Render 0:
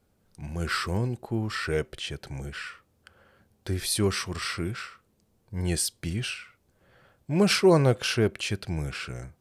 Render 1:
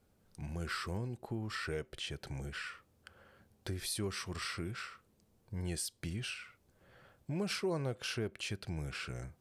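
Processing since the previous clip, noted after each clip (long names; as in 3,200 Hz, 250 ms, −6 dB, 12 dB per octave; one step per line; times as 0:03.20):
downward compressor 2.5 to 1, threshold −37 dBFS, peak gain reduction 15 dB
level −2.5 dB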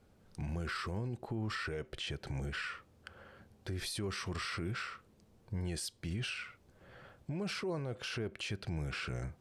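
high-shelf EQ 8,500 Hz −12 dB
brickwall limiter −36.5 dBFS, peak gain reduction 10.5 dB
level +6 dB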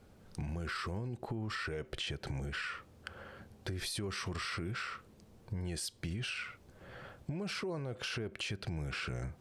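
downward compressor, threshold −41 dBFS, peak gain reduction 7.5 dB
level +5.5 dB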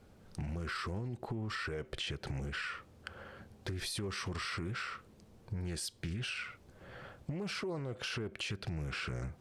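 highs frequency-modulated by the lows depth 0.32 ms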